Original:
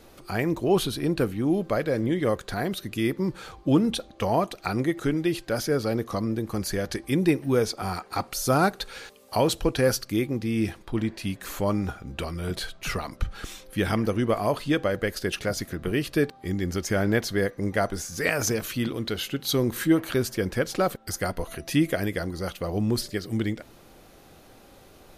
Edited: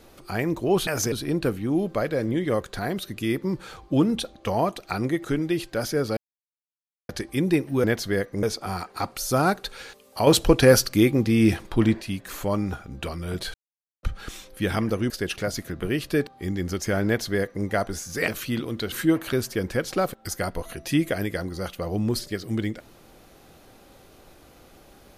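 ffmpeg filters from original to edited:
-filter_complex "[0:a]asplit=14[a][b][c][d][e][f][g][h][i][j][k][l][m][n];[a]atrim=end=0.872[o];[b]atrim=start=18.308:end=18.562[p];[c]atrim=start=0.868:end=5.92,asetpts=PTS-STARTPTS,afade=t=out:st=5.048:d=0.004:c=hsin[q];[d]atrim=start=5.92:end=6.84,asetpts=PTS-STARTPTS,volume=0[r];[e]atrim=start=6.84:end=7.592,asetpts=PTS-STARTPTS,afade=t=in:d=0.004:c=hsin[s];[f]atrim=start=17.088:end=17.682[t];[g]atrim=start=7.588:end=9.432[u];[h]atrim=start=9.428:end=11.172,asetpts=PTS-STARTPTS,volume=7dB[v];[i]atrim=start=11.168:end=12.7,asetpts=PTS-STARTPTS,afade=t=out:st=1.528:d=0.004:c=hsin[w];[j]atrim=start=12.7:end=13.19,asetpts=PTS-STARTPTS,volume=0[x];[k]atrim=start=13.19:end=14.262,asetpts=PTS-STARTPTS,afade=t=in:d=0.004:c=hsin[y];[l]atrim=start=15.128:end=18.312[z];[m]atrim=start=18.558:end=19.202[aa];[n]atrim=start=19.738[ab];[o][p]acrossfade=d=0.004:c1=hsin:c2=hsin[ac];[q][r][s]concat=n=3:v=0:a=1[ad];[ac][ad]acrossfade=d=0.004:c1=hsin:c2=hsin[ae];[ae][t]acrossfade=d=0.004:c1=hsin:c2=hsin[af];[af][u]acrossfade=d=0.004:c1=hsin:c2=hsin[ag];[ag][v]acrossfade=d=0.004:c1=hsin:c2=hsin[ah];[w][x][y]concat=n=3:v=0:a=1[ai];[ah][ai]acrossfade=d=0.004:c1=hsin:c2=hsin[aj];[aj][z]acrossfade=d=0.004:c1=hsin:c2=hsin[ak];[ak][aa]acrossfade=d=0.004:c1=hsin:c2=hsin[al];[al][ab]acrossfade=d=0.004:c1=hsin:c2=hsin"

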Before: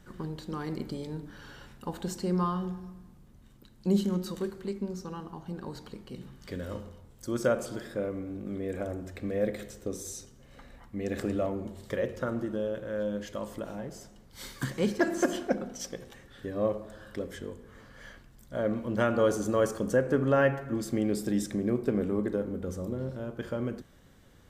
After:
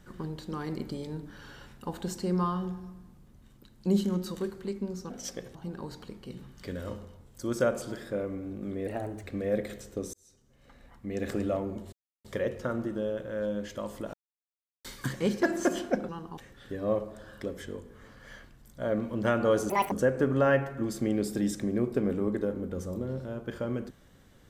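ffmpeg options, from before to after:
-filter_complex "[0:a]asplit=13[a][b][c][d][e][f][g][h][i][j][k][l][m];[a]atrim=end=5.102[n];[b]atrim=start=15.658:end=16.112[o];[c]atrim=start=5.388:end=8.714[p];[d]atrim=start=8.71:end=9.13,asetpts=PTS-STARTPTS,asetrate=50715,aresample=44100,atrim=end_sample=16106,asetpts=PTS-STARTPTS[q];[e]atrim=start=9.126:end=10.03,asetpts=PTS-STARTPTS,afade=t=out:st=0.9:d=0.004:c=hsin[r];[f]atrim=start=10.03:end=11.82,asetpts=PTS-STARTPTS,afade=t=in:d=1.07,afade=t=out:st=1.786:d=0.004:c=hsin,apad=pad_dur=0.32[s];[g]atrim=start=11.82:end=13.71,asetpts=PTS-STARTPTS,afade=t=in:d=0.004:c=hsin,afade=t=out:st=1.886:d=0.004:c=hsin[t];[h]atrim=start=13.71:end=14.42,asetpts=PTS-STARTPTS,volume=0[u];[i]atrim=start=14.42:end=15.662,asetpts=PTS-STARTPTS,afade=t=in:d=0.004:c=hsin[v];[j]atrim=start=5.098:end=5.392[w];[k]atrim=start=16.108:end=19.434[x];[l]atrim=start=19.43:end=19.83,asetpts=PTS-STARTPTS,asetrate=79380,aresample=44100[y];[m]atrim=start=19.826[z];[n][o]acrossfade=d=0.004:c1=hsin:c2=hsin[aa];[aa][p]acrossfade=d=0.004:c1=hsin:c2=hsin[ab];[ab][q]acrossfade=d=0.004:c1=hsin:c2=hsin[ac];[r][s][t][u][v]concat=n=5:v=0:a=1[ad];[ac][ad]acrossfade=d=0.004:c1=hsin:c2=hsin[ae];[ae][w]acrossfade=d=0.004:c1=hsin:c2=hsin[af];[af][x]acrossfade=d=0.004:c1=hsin:c2=hsin[ag];[ag][y]acrossfade=d=0.004:c1=hsin:c2=hsin[ah];[ah][z]acrossfade=d=0.004:c1=hsin:c2=hsin"

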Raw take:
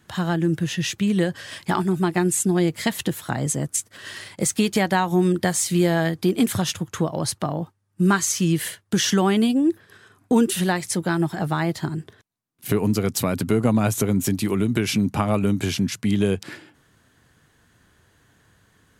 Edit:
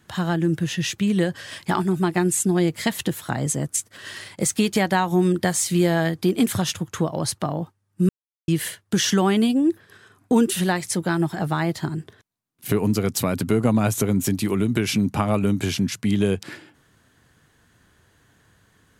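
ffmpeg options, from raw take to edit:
-filter_complex "[0:a]asplit=3[a][b][c];[a]atrim=end=8.09,asetpts=PTS-STARTPTS,afade=t=out:st=8.086:d=0.004:c=hsin[d];[b]atrim=start=8.09:end=8.48,asetpts=PTS-STARTPTS,volume=0[e];[c]atrim=start=8.48,asetpts=PTS-STARTPTS,afade=t=in:d=0.004:c=hsin[f];[d][e][f]concat=n=3:v=0:a=1"

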